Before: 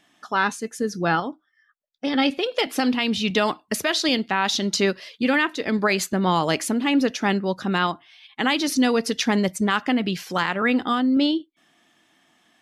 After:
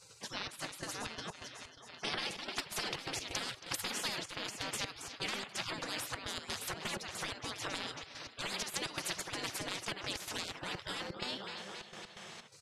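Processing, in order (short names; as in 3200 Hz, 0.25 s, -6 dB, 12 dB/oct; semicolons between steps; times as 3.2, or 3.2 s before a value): BPF 160–7100 Hz; on a send: feedback echo 0.274 s, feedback 55%, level -20 dB; on the sum: compressor, threshold -23 dBFS, peak gain reduction 8 dB; step gate "xxxx.x.xx.x.xx.x" 127 bpm -12 dB; spectral gate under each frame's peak -20 dB weak; low shelf 490 Hz +11 dB; spectral compressor 2:1; gain +1.5 dB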